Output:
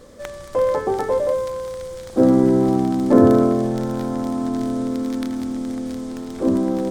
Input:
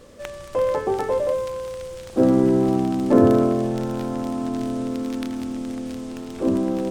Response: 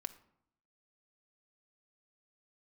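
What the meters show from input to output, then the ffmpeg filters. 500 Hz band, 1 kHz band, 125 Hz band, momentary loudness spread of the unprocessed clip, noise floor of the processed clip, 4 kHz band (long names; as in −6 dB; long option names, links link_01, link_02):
+2.0 dB, +2.5 dB, +1.5 dB, 15 LU, −37 dBFS, can't be measured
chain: -filter_complex "[0:a]equalizer=frequency=2700:width_type=o:width=0.35:gain=-7.5,asplit=2[link_01][link_02];[1:a]atrim=start_sample=2205[link_03];[link_02][link_03]afir=irnorm=-1:irlink=0,volume=-4.5dB[link_04];[link_01][link_04]amix=inputs=2:normalize=0,volume=-1dB"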